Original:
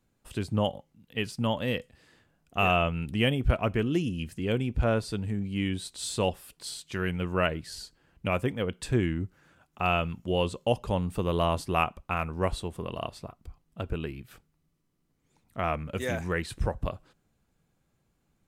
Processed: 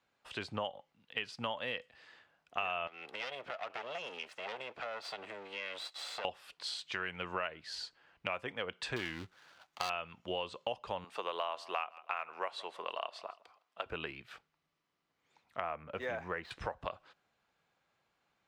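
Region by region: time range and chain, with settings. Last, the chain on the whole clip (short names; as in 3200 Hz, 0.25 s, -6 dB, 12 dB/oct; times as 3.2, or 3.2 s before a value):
2.87–6.25 minimum comb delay 1.5 ms + HPF 320 Hz + compressor 5:1, threshold -38 dBFS
8.96–9.9 switching dead time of 0.18 ms + high shelf 5200 Hz +11 dB + notch 5200 Hz, Q 29
11.04–13.86 HPF 430 Hz + feedback echo 0.16 s, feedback 35%, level -23.5 dB
15.6–16.51 median filter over 5 samples + bell 4700 Hz -11 dB 3 oct
whole clip: HPF 110 Hz 6 dB/oct; three-band isolator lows -17 dB, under 570 Hz, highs -23 dB, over 5200 Hz; compressor 6:1, threshold -38 dBFS; gain +4 dB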